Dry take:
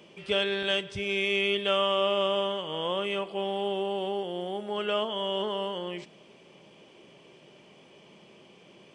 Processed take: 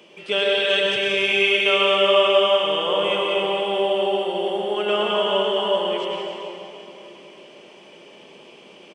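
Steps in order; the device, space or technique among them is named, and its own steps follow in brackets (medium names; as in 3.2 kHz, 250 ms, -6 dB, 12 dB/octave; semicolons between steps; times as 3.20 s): stadium PA (high-pass 250 Hz 12 dB/octave; peaking EQ 2.7 kHz +3 dB 0.33 oct; loudspeakers at several distances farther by 61 m -9 dB, 99 m -12 dB; reverberation RT60 3.1 s, pre-delay 93 ms, DRR -2 dB); trim +4 dB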